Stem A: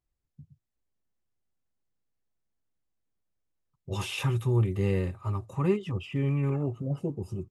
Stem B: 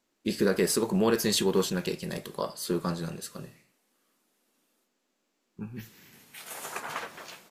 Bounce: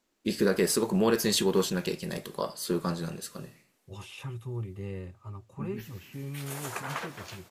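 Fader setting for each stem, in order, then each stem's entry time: −11.0, 0.0 decibels; 0.00, 0.00 seconds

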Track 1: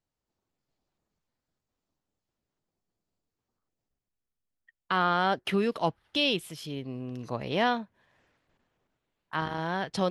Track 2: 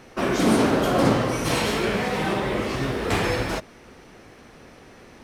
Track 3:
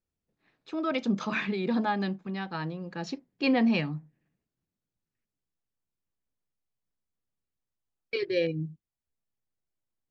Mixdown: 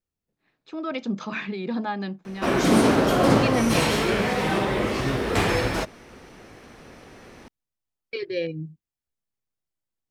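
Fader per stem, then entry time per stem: muted, +1.0 dB, −0.5 dB; muted, 2.25 s, 0.00 s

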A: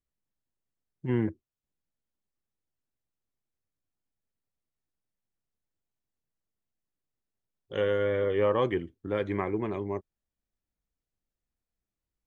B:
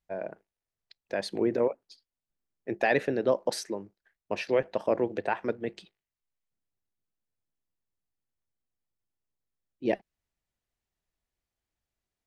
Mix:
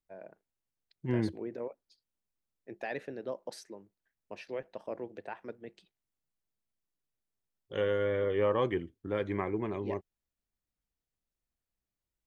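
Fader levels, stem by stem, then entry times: −3.0, −13.0 decibels; 0.00, 0.00 seconds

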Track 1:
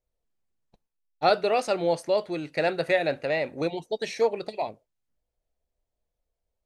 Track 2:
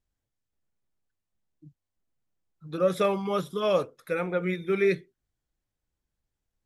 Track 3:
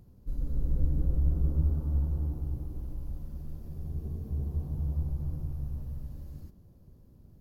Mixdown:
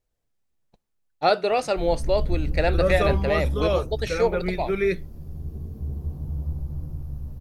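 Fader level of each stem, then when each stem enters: +1.5, +0.5, +2.0 decibels; 0.00, 0.00, 1.50 seconds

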